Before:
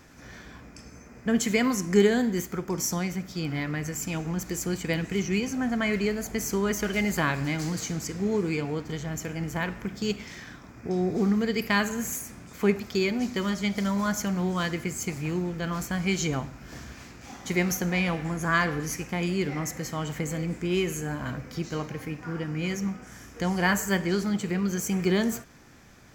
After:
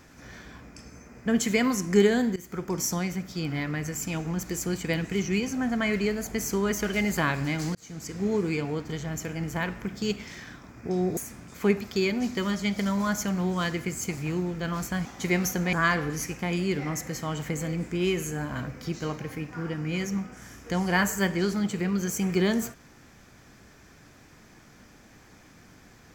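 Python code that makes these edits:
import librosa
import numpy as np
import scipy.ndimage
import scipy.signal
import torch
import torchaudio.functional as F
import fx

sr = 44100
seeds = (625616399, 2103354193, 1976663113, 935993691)

y = fx.edit(x, sr, fx.fade_in_from(start_s=2.36, length_s=0.27, floor_db=-21.0),
    fx.fade_in_span(start_s=7.75, length_s=0.5),
    fx.cut(start_s=11.17, length_s=0.99),
    fx.cut(start_s=16.04, length_s=1.27),
    fx.cut(start_s=17.99, length_s=0.44), tone=tone)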